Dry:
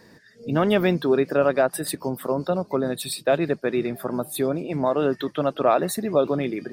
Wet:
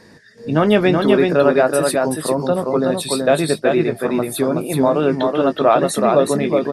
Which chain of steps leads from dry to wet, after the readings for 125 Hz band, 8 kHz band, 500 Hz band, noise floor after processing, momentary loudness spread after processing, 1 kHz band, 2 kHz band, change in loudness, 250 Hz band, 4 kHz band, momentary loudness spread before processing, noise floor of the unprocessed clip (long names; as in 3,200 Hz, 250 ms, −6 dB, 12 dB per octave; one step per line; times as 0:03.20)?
+6.0 dB, +7.0 dB, +7.0 dB, −46 dBFS, 5 LU, +7.0 dB, +7.0 dB, +7.0 dB, +7.0 dB, +7.0 dB, 8 LU, −53 dBFS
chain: double-tracking delay 19 ms −11 dB
single-tap delay 376 ms −3.5 dB
level +5 dB
AC-3 64 kbit/s 32,000 Hz